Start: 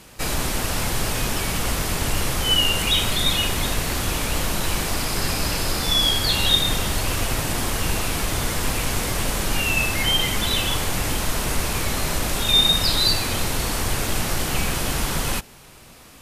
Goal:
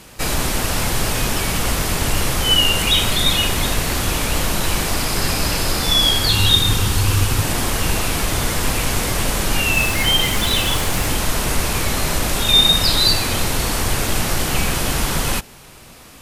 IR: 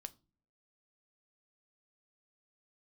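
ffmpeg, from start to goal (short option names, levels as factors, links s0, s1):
-filter_complex "[0:a]asettb=1/sr,asplit=3[s0][s1][s2];[s0]atrim=end=6.284[s3];[s1]atrim=start=6.28:end=7.42,asetpts=PTS-STARTPTS,afade=t=in:d=0.004:c=qsin,afade=t=out:st=1.136:d=0.004:c=qsin,equalizer=f=100:t=o:w=0.33:g=12,equalizer=f=630:t=o:w=0.33:g=-11,equalizer=f=2000:t=o:w=0.33:g=-4[s4];[s2]atrim=start=7.416[s5];[s3][s4]acrossfade=d=0.004:c1=hsin:c2=qsin[s6];[s6][s5]acrossfade=d=0.004:c1=qsin:c2=hsin,asettb=1/sr,asplit=3[s7][s8][s9];[s7]atrim=end=9.754[s10];[s8]atrim=start=9.75:end=11.09,asetpts=PTS-STARTPTS,afade=t=in:d=0.004:c=qsin,afade=t=out:st=1.336:d=0.004:c=qsin,acrusher=bits=7:dc=4:mix=0:aa=0.000001[s11];[s9]atrim=start=11.086[s12];[s10][s11]acrossfade=d=0.004:c1=hsin:c2=qsin[s13];[s13][s12]acrossfade=d=0.004:c1=qsin:c2=hsin,volume=1.58"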